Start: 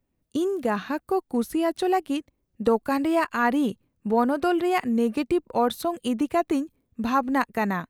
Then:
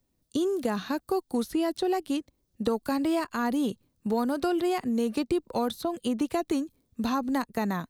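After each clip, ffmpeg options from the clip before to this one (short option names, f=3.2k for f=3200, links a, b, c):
-filter_complex "[0:a]highshelf=f=3.2k:t=q:w=1.5:g=6.5,acrossover=split=390|1400|4000[a][b][c][d];[a]acompressor=threshold=-27dB:ratio=4[e];[b]acompressor=threshold=-31dB:ratio=4[f];[c]acompressor=threshold=-41dB:ratio=4[g];[d]acompressor=threshold=-47dB:ratio=4[h];[e][f][g][h]amix=inputs=4:normalize=0"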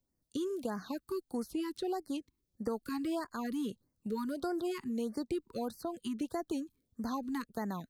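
-af "afftfilt=real='re*(1-between(b*sr/1024,570*pow(3200/570,0.5+0.5*sin(2*PI*1.6*pts/sr))/1.41,570*pow(3200/570,0.5+0.5*sin(2*PI*1.6*pts/sr))*1.41))':imag='im*(1-between(b*sr/1024,570*pow(3200/570,0.5+0.5*sin(2*PI*1.6*pts/sr))/1.41,570*pow(3200/570,0.5+0.5*sin(2*PI*1.6*pts/sr))*1.41))':win_size=1024:overlap=0.75,volume=-8.5dB"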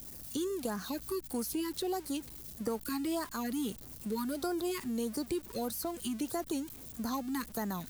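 -af "aeval=exprs='val(0)+0.5*0.00398*sgn(val(0))':c=same,aeval=exprs='val(0)+0.00126*(sin(2*PI*60*n/s)+sin(2*PI*2*60*n/s)/2+sin(2*PI*3*60*n/s)/3+sin(2*PI*4*60*n/s)/4+sin(2*PI*5*60*n/s)/5)':c=same,crystalizer=i=2:c=0"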